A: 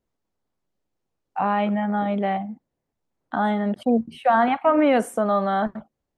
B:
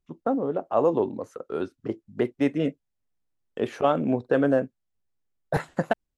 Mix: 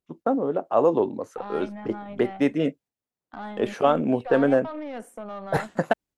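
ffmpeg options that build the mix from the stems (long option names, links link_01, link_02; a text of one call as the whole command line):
ffmpeg -i stem1.wav -i stem2.wav -filter_complex "[0:a]highpass=120,alimiter=limit=-13.5dB:level=0:latency=1:release=51,aeval=exprs='0.211*(cos(1*acos(clip(val(0)/0.211,-1,1)))-cos(1*PI/2))+0.0168*(cos(4*acos(clip(val(0)/0.211,-1,1)))-cos(4*PI/2))':channel_layout=same,volume=-14dB[link_01];[1:a]agate=range=-7dB:threshold=-49dB:ratio=16:detection=peak,highpass=frequency=150:poles=1,volume=2.5dB[link_02];[link_01][link_02]amix=inputs=2:normalize=0" out.wav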